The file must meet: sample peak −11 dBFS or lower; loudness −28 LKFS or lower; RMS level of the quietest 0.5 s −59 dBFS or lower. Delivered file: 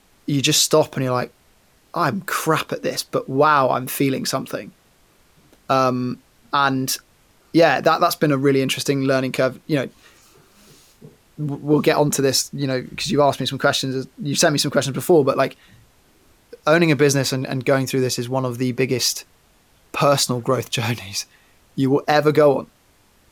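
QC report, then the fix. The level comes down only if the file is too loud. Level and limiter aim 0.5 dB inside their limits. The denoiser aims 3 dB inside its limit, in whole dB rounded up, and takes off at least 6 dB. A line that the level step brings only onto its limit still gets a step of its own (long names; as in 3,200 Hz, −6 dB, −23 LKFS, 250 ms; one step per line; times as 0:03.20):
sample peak −4.5 dBFS: out of spec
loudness −19.5 LKFS: out of spec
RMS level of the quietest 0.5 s −57 dBFS: out of spec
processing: level −9 dB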